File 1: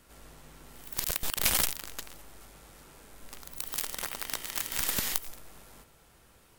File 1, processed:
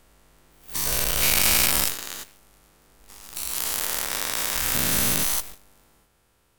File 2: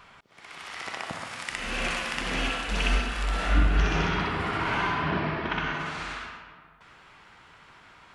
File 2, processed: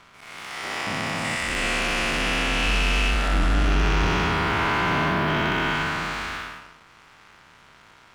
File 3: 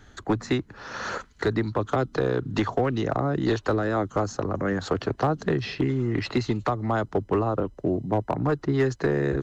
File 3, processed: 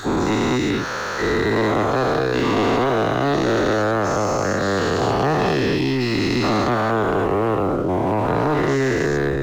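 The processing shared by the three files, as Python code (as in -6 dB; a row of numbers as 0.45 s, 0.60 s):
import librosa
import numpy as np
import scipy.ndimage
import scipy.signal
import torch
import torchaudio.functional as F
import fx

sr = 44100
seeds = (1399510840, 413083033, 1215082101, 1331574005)

y = fx.spec_dilate(x, sr, span_ms=480)
y = fx.leveller(y, sr, passes=2)
y = y * 10.0 ** (-7.5 / 20.0)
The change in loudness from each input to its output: +9.0 LU, +5.0 LU, +7.0 LU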